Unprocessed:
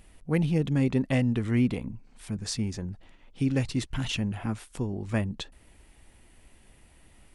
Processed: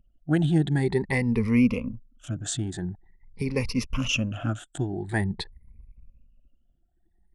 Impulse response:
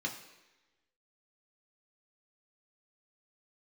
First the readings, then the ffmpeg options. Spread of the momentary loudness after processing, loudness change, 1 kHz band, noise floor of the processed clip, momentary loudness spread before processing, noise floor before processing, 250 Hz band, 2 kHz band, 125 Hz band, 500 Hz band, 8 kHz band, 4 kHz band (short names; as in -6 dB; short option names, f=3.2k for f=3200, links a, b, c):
14 LU, +2.0 dB, +3.5 dB, -68 dBFS, 14 LU, -58 dBFS, +2.0 dB, +6.0 dB, +1.0 dB, +3.0 dB, +4.5 dB, +3.0 dB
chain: -af "afftfilt=real='re*pow(10,18/40*sin(2*PI*(0.87*log(max(b,1)*sr/1024/100)/log(2)-(0.46)*(pts-256)/sr)))':imag='im*pow(10,18/40*sin(2*PI*(0.87*log(max(b,1)*sr/1024/100)/log(2)-(0.46)*(pts-256)/sr)))':win_size=1024:overlap=0.75,anlmdn=0.0398"